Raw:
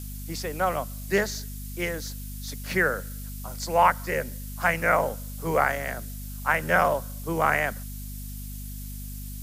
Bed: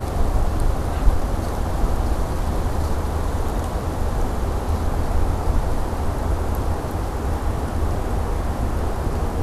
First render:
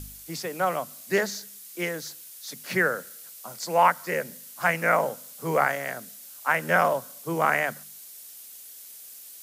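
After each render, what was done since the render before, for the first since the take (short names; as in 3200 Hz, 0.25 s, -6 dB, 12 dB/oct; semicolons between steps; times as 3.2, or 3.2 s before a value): de-hum 50 Hz, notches 5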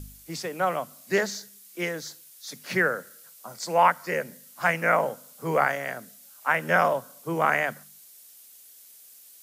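noise print and reduce 6 dB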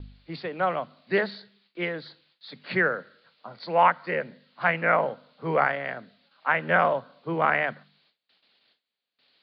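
steep low-pass 4500 Hz 96 dB/oct; gate with hold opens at -55 dBFS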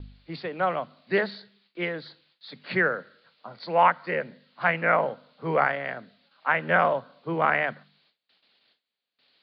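nothing audible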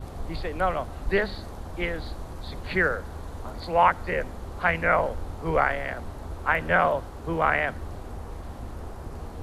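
add bed -14.5 dB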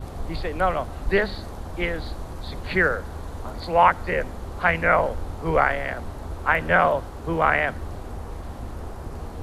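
gain +3 dB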